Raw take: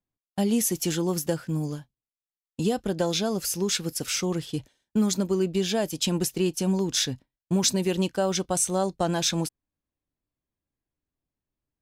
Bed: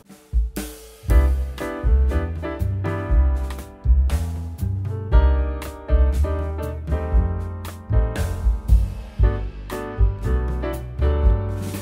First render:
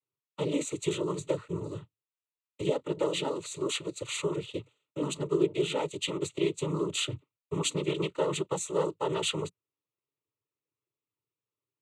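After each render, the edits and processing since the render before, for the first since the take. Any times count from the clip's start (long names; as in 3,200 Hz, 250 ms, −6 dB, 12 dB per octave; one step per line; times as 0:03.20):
cochlear-implant simulation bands 12
phaser with its sweep stopped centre 1,100 Hz, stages 8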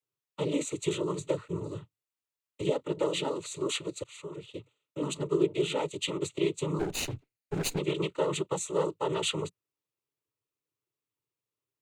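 0:04.04–0:05.15: fade in, from −19 dB
0:06.79–0:07.79: lower of the sound and its delayed copy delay 0.46 ms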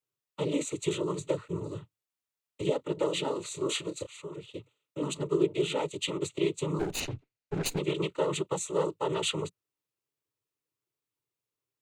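0:03.26–0:04.07: double-tracking delay 29 ms −8 dB
0:07.00–0:07.66: high-frequency loss of the air 68 metres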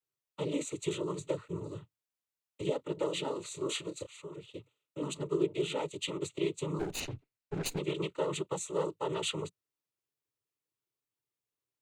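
level −4 dB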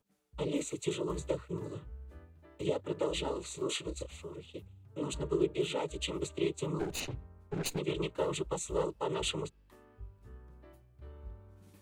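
mix in bed −30.5 dB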